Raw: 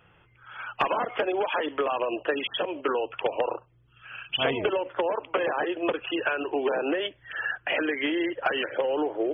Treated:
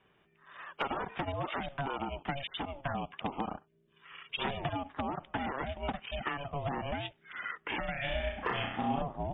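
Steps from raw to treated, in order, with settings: 3.68–3.89 spectral delete 420–1200 Hz; 7.91–9.02 flutter echo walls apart 5.6 m, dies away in 0.61 s; ring modulator 280 Hz; gain -6 dB

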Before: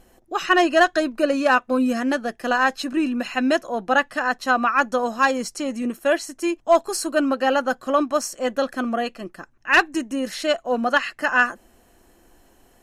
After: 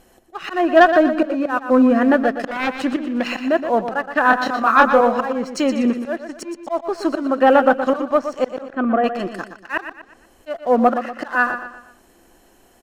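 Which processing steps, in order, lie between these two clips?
2.47–3.3 self-modulated delay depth 0.39 ms; 9.92–10.46 room tone; treble ducked by the level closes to 1500 Hz, closed at -19 dBFS; low shelf 130 Hz -6 dB; auto swell 0.309 s; sample leveller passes 1; 4.23–5.01 doubler 27 ms -3 dB; 8.61–9.04 air absorption 460 m; feedback echo 0.12 s, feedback 40%, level -9.5 dB; gain +5 dB

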